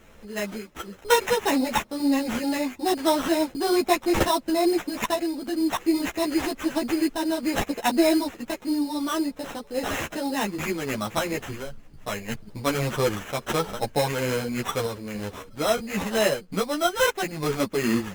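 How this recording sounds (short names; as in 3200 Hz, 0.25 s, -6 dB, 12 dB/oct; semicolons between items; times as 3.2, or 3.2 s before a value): aliases and images of a low sample rate 4600 Hz, jitter 0%; random-step tremolo 3.5 Hz; a shimmering, thickened sound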